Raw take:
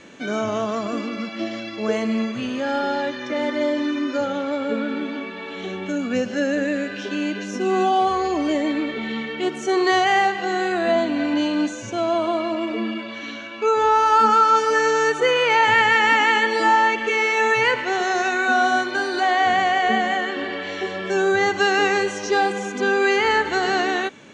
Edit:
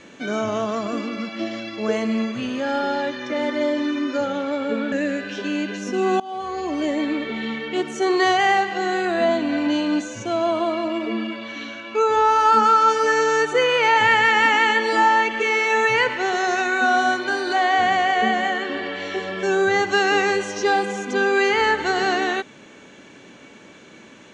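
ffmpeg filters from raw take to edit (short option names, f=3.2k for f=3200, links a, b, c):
-filter_complex "[0:a]asplit=3[a][b][c];[a]atrim=end=4.922[d];[b]atrim=start=6.588:end=7.87,asetpts=PTS-STARTPTS,afade=t=out:st=1.278:d=0.004:c=hsin:silence=0.0794328[e];[c]atrim=start=7.87,asetpts=PTS-STARTPTS,afade=t=in:d=1.09:c=qsin:silence=0.0794328[f];[e][f]concat=n=2:v=0:a=1[g];[d][g]acrossfade=d=0.004:c1=hsin:c2=hsin"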